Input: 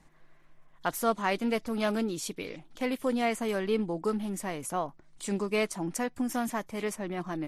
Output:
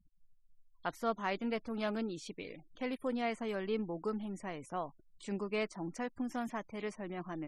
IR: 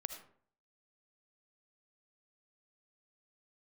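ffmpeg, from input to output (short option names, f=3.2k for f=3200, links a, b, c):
-filter_complex "[0:a]acrossover=split=5600[a][b];[b]acompressor=threshold=-52dB:ratio=4:attack=1:release=60[c];[a][c]amix=inputs=2:normalize=0,afftfilt=real='re*gte(hypot(re,im),0.00398)':imag='im*gte(hypot(re,im),0.00398)':win_size=1024:overlap=0.75,volume=-7dB"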